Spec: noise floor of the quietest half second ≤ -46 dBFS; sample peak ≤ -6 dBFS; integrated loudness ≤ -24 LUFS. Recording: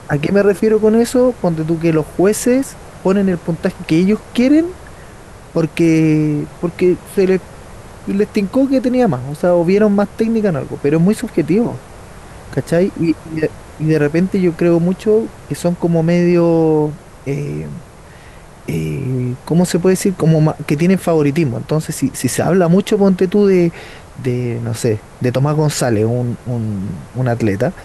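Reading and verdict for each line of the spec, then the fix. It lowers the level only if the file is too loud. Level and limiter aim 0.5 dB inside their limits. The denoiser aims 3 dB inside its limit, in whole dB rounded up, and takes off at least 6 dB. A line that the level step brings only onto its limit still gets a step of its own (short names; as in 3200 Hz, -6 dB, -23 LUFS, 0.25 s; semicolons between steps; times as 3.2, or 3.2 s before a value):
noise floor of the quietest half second -38 dBFS: fail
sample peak -3.0 dBFS: fail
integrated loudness -15.5 LUFS: fail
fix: gain -9 dB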